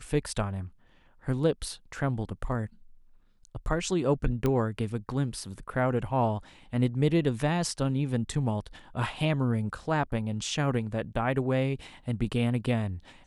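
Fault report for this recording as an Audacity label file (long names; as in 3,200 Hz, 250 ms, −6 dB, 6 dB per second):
4.460000	4.460000	click −15 dBFS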